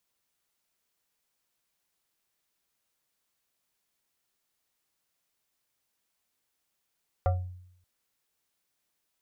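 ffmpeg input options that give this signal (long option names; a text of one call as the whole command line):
ffmpeg -f lavfi -i "aevalsrc='0.106*pow(10,-3*t/0.74)*sin(2*PI*90.4*t+1.1*pow(10,-3*t/0.37)*sin(2*PI*7.06*90.4*t))':duration=0.58:sample_rate=44100" out.wav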